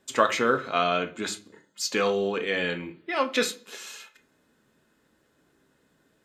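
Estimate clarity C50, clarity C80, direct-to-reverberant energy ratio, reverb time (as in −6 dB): 15.5 dB, 21.0 dB, 5.5 dB, 0.40 s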